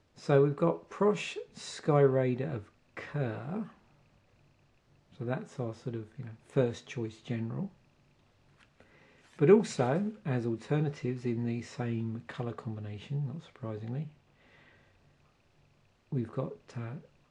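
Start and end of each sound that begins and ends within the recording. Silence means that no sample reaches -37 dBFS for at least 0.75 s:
5.20–7.67 s
9.39–14.04 s

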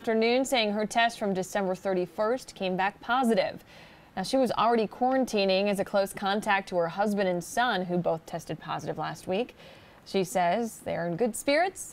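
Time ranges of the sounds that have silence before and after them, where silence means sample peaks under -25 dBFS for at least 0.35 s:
4.17–9.43 s

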